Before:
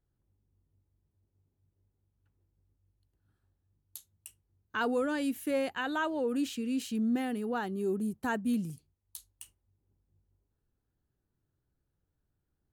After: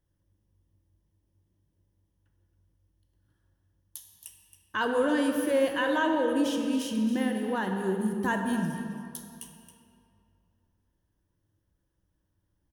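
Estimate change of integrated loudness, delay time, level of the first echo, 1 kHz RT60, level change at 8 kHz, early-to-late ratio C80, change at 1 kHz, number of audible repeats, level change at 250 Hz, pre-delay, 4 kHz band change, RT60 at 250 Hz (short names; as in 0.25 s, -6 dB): +4.5 dB, 0.273 s, -11.5 dB, 2.6 s, +5.0 dB, 4.5 dB, +5.5 dB, 1, +4.0 dB, 18 ms, +6.0 dB, 2.4 s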